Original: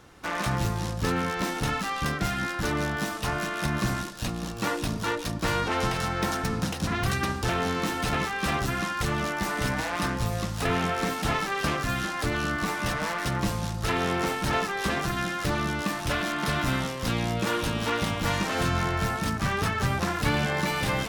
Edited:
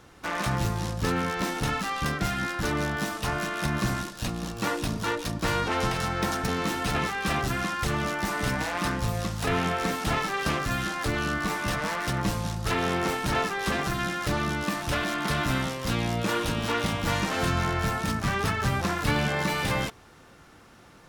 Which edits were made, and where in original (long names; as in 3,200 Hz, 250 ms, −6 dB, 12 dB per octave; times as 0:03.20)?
0:06.48–0:07.66: remove